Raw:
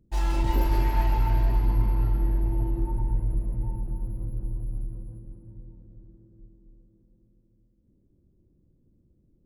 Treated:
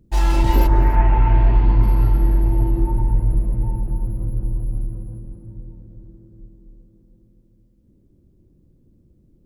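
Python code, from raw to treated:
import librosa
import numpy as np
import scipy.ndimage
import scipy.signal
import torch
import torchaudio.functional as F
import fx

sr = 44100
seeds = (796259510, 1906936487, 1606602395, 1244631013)

y = fx.lowpass(x, sr, hz=fx.line((0.66, 1700.0), (1.81, 4200.0)), slope=24, at=(0.66, 1.81), fade=0.02)
y = y + 10.0 ** (-17.5 / 20.0) * np.pad(y, (int(285 * sr / 1000.0), 0))[:len(y)]
y = y * librosa.db_to_amplitude(8.5)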